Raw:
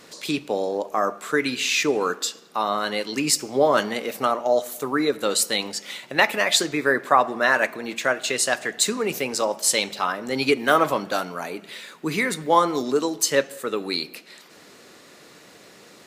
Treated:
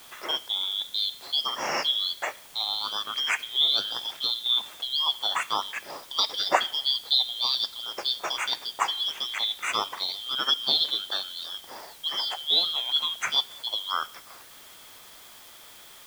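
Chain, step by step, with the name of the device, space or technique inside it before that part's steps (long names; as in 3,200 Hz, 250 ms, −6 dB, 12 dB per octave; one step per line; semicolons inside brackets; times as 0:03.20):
split-band scrambled radio (band-splitting scrambler in four parts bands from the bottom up 3412; band-pass filter 320–2,900 Hz; white noise bed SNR 21 dB)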